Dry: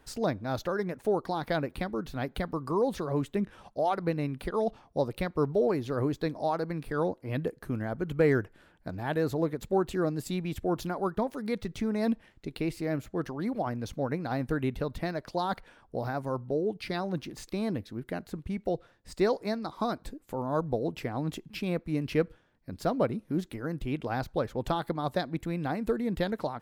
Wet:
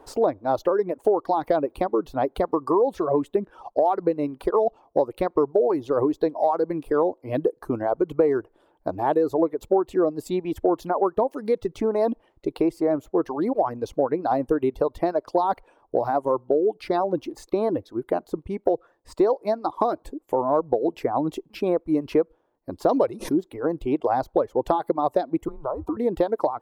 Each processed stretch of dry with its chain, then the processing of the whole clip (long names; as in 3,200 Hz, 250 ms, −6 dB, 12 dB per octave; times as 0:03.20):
0:22.89–0:23.33: parametric band 5,800 Hz +15 dB 2.1 octaves + background raised ahead of every attack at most 24 dB per second
0:25.48–0:25.97: frequency shifter −150 Hz + high shelf with overshoot 1,500 Hz −8.5 dB, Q 3 + downward compressor 10 to 1, threshold −33 dBFS
whole clip: reverb reduction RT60 1.2 s; flat-topped bell 580 Hz +15.5 dB 2.3 octaves; downward compressor 4 to 1, threshold −18 dBFS